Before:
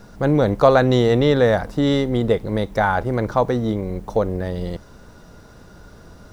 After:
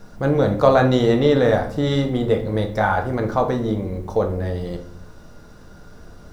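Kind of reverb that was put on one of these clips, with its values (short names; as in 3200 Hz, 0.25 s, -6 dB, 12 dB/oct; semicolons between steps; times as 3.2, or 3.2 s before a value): shoebox room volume 64 m³, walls mixed, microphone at 0.48 m; gain -2.5 dB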